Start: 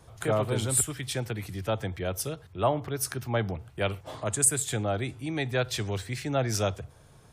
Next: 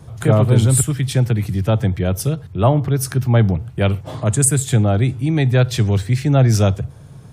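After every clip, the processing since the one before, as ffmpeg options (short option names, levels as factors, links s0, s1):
-af "equalizer=f=140:w=0.62:g=13,volume=2"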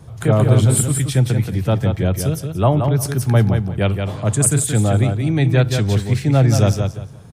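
-af "aecho=1:1:176|352|528:0.501|0.105|0.0221,volume=0.891"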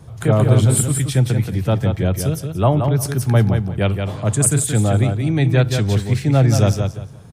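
-af "aeval=exprs='0.841*(cos(1*acos(clip(val(0)/0.841,-1,1)))-cos(1*PI/2))+0.0119*(cos(3*acos(clip(val(0)/0.841,-1,1)))-cos(3*PI/2))':c=same"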